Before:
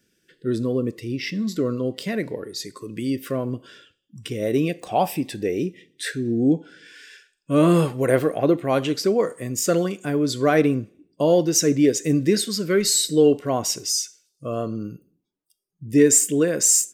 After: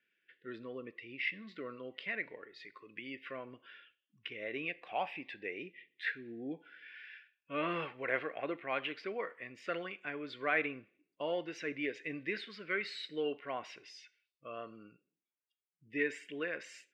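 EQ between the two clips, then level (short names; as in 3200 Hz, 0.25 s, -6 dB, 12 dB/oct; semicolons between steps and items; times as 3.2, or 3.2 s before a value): band-pass 2300 Hz, Q 2.4; air absorption 400 m; +3.0 dB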